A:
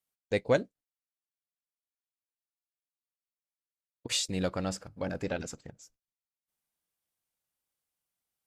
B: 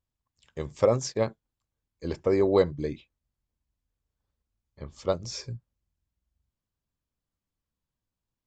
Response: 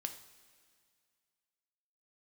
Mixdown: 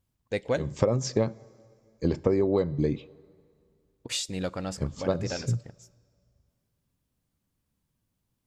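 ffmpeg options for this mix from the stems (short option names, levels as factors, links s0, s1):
-filter_complex "[0:a]volume=0.794,asplit=3[s0][s1][s2];[s1]volume=0.211[s3];[1:a]equalizer=f=170:t=o:w=2.6:g=9,volume=1.33,asplit=2[s4][s5];[s5]volume=0.251[s6];[s2]apad=whole_len=373451[s7];[s4][s7]sidechaincompress=threshold=0.00794:ratio=8:attack=50:release=138[s8];[2:a]atrim=start_sample=2205[s9];[s3][s6]amix=inputs=2:normalize=0[s10];[s10][s9]afir=irnorm=-1:irlink=0[s11];[s0][s8][s11]amix=inputs=3:normalize=0,acompressor=threshold=0.1:ratio=12"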